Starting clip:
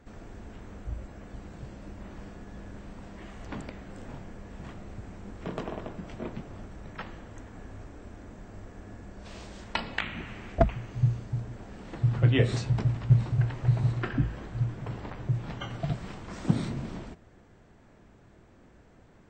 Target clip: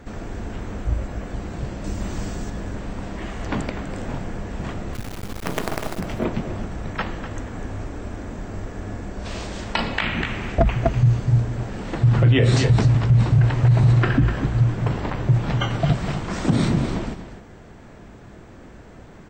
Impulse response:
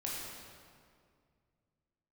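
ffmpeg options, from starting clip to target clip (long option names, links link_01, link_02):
-filter_complex "[0:a]asettb=1/sr,asplit=3[link_01][link_02][link_03];[link_01]atrim=end=1.844[link_04];[link_02]atrim=start=1.84:end=2.5,asetpts=PTS-STARTPTS,afade=type=in:duration=0.004:curve=qsin,afade=type=out:start_time=0.656:duration=0.004:curve=qsin,bass=frequency=250:gain=3,treble=frequency=4000:gain=12[link_05];[link_03]atrim=start=2.496[link_06];[link_04][link_05]acrossfade=duration=0.004:curve1=hsin:curve2=qsin[link_07];[link_07][link_06]acrossfade=duration=0.004:curve1=qsin:curve2=hsin,asplit=3[link_08][link_09][link_10];[link_08]afade=type=out:start_time=4.93:duration=0.02[link_11];[link_09]acrusher=bits=5:dc=4:mix=0:aa=0.000001,afade=type=in:start_time=4.93:duration=0.02,afade=type=out:start_time=5.99:duration=0.02[link_12];[link_10]afade=type=in:start_time=5.99:duration=0.02[link_13];[link_11][link_12][link_13]amix=inputs=3:normalize=0,asplit=2[link_14][link_15];[link_15]aecho=0:1:248:0.266[link_16];[link_14][link_16]amix=inputs=2:normalize=0,alimiter=level_in=20.5dB:limit=-1dB:release=50:level=0:latency=1,volume=-7.5dB"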